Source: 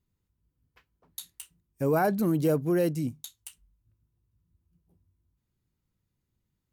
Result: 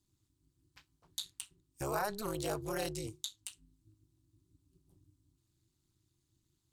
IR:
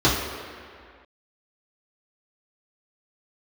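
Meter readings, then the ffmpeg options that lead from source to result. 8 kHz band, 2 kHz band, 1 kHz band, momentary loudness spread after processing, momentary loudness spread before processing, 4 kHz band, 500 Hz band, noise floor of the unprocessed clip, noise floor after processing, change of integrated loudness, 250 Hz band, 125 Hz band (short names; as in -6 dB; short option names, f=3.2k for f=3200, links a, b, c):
+0.5 dB, -6.0 dB, -7.0 dB, 13 LU, 19 LU, +4.5 dB, -11.5 dB, -81 dBFS, -81 dBFS, -13.0 dB, -15.5 dB, -13.5 dB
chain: -filter_complex "[0:a]equalizer=f=125:t=o:w=1:g=9,equalizer=f=250:t=o:w=1:g=-9,equalizer=f=500:t=o:w=1:g=-7,equalizer=f=1k:t=o:w=1:g=4,equalizer=f=2k:t=o:w=1:g=-3,equalizer=f=4k:t=o:w=1:g=9,equalizer=f=8k:t=o:w=1:g=12,tremolo=f=210:d=1,acrossover=split=400|4000[a][b][c];[a]acompressor=threshold=-47dB:ratio=4[d];[b]acompressor=threshold=-34dB:ratio=4[e];[c]acompressor=threshold=-47dB:ratio=4[f];[d][e][f]amix=inputs=3:normalize=0,volume=2dB"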